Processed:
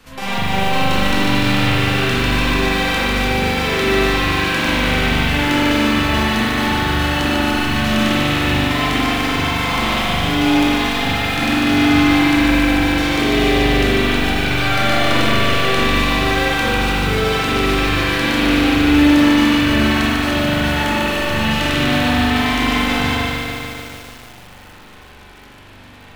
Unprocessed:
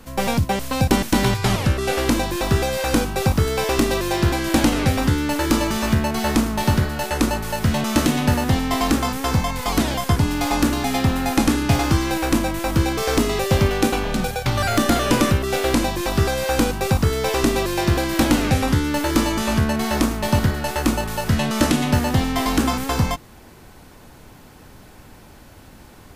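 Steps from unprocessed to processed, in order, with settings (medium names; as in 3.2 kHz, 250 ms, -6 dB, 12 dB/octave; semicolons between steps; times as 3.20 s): peaking EQ 2.9 kHz +10.5 dB 2.5 oct; in parallel at -2.5 dB: compressor with a negative ratio -21 dBFS; on the sum: wow and flutter 20 cents; spring tank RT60 1.8 s, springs 41 ms, chirp 25 ms, DRR -8.5 dB; bit-crushed delay 147 ms, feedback 80%, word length 4-bit, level -3.5 dB; trim -14.5 dB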